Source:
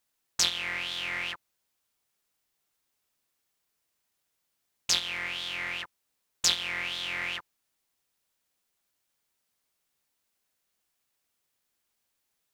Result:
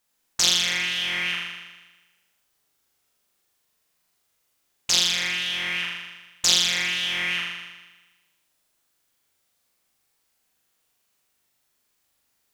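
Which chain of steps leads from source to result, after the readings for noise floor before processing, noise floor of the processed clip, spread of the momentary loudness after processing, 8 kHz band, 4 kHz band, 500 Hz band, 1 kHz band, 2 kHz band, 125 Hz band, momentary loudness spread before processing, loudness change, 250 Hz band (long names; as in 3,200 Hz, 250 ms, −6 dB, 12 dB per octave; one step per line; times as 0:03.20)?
−80 dBFS, −72 dBFS, 17 LU, +7.5 dB, +8.5 dB, +5.5 dB, +4.0 dB, +7.0 dB, +8.0 dB, 12 LU, +7.5 dB, +8.5 dB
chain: flutter between parallel walls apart 6.9 metres, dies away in 1.2 s
level +3 dB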